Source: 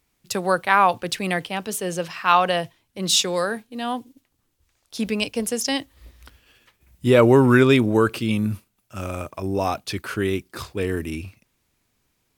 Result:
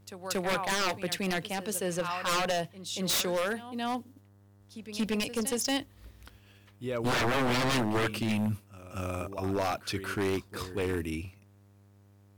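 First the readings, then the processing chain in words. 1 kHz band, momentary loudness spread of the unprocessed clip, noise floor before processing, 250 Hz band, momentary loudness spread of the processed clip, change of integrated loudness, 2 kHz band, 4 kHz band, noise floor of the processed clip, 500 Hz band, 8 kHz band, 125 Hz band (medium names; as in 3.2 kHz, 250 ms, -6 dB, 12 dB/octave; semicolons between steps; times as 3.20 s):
-10.5 dB, 16 LU, -71 dBFS, -9.5 dB, 11 LU, -9.5 dB, -7.5 dB, -6.5 dB, -59 dBFS, -10.5 dB, -6.0 dB, -10.0 dB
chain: pre-echo 232 ms -14 dB; mains buzz 100 Hz, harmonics 20, -54 dBFS -8 dB/octave; wavefolder -17.5 dBFS; trim -5 dB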